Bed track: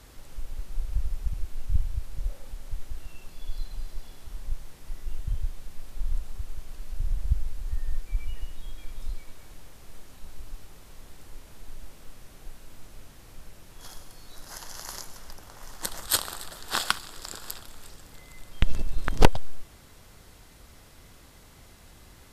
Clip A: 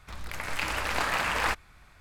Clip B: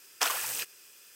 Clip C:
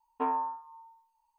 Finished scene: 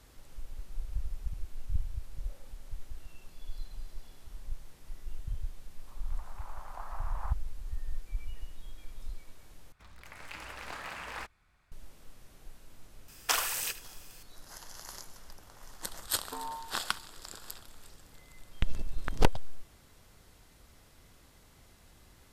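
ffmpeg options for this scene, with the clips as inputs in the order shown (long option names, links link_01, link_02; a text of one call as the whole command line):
ffmpeg -i bed.wav -i cue0.wav -i cue1.wav -i cue2.wav -filter_complex "[1:a]asplit=2[link_01][link_02];[0:a]volume=-7dB[link_03];[link_01]asuperpass=centerf=880:order=4:qfactor=1.6[link_04];[2:a]aecho=1:1:77:0.188[link_05];[3:a]alimiter=level_in=0.5dB:limit=-24dB:level=0:latency=1:release=71,volume=-0.5dB[link_06];[link_03]asplit=2[link_07][link_08];[link_07]atrim=end=9.724[link_09];[link_02]atrim=end=2,asetpts=PTS-STARTPTS,volume=-14dB[link_10];[link_08]atrim=start=11.716[link_11];[link_04]atrim=end=2,asetpts=PTS-STARTPTS,volume=-12.5dB,afade=type=in:duration=0.004:curve=hsin,afade=type=out:start_time=1.996:duration=0.004:curve=hsin,adelay=5790[link_12];[link_05]atrim=end=1.15,asetpts=PTS-STARTPTS,volume=-0.5dB,afade=type=in:duration=0.004:curve=hsin,afade=type=out:start_time=1.146:duration=0.004:curve=hsin,adelay=13080[link_13];[link_06]atrim=end=1.38,asetpts=PTS-STARTPTS,volume=-8dB,afade=type=in:duration=0.004:curve=hsin,afade=type=out:start_time=1.376:duration=0.004:curve=hsin,adelay=16120[link_14];[link_09][link_10]acrossfade=duration=0.004:curve1=hsin:curve2=hsin[link_15];[link_15][link_11]acrossfade=duration=0.004:curve1=hsin:curve2=hsin[link_16];[link_16][link_12][link_13][link_14]amix=inputs=4:normalize=0" out.wav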